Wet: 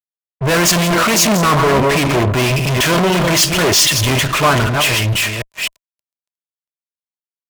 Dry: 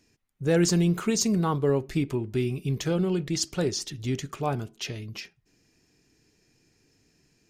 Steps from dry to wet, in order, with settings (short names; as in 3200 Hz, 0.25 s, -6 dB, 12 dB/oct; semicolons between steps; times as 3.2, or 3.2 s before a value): reverse delay 0.258 s, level -10 dB; band shelf 2000 Hz +13 dB; fuzz box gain 47 dB, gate -50 dBFS; small resonant body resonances 630/1000 Hz, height 9 dB, ringing for 30 ms; three-band expander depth 100%